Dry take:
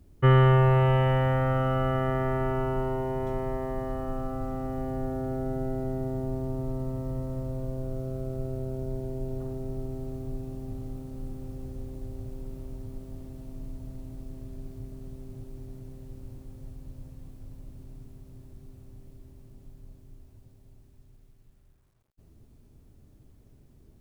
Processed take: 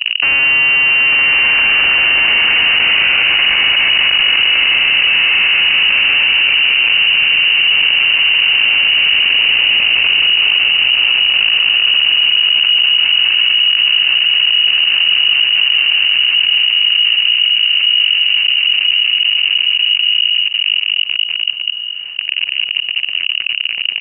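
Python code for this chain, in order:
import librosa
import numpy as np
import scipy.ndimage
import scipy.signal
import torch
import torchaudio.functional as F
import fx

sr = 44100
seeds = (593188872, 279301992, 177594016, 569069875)

y = fx.low_shelf(x, sr, hz=400.0, db=9.5)
y = fx.hum_notches(y, sr, base_hz=50, count=8)
y = fx.leveller(y, sr, passes=5)
y = 10.0 ** (-22.5 / 20.0) * np.tanh(y / 10.0 ** (-22.5 / 20.0))
y = y + 10.0 ** (-4.0 / 20.0) * np.pad(y, (int(200 * sr / 1000.0), 0))[:len(y)]
y = fx.freq_invert(y, sr, carrier_hz=2900)
y = fx.env_flatten(y, sr, amount_pct=70)
y = F.gain(torch.from_numpy(y), 7.0).numpy()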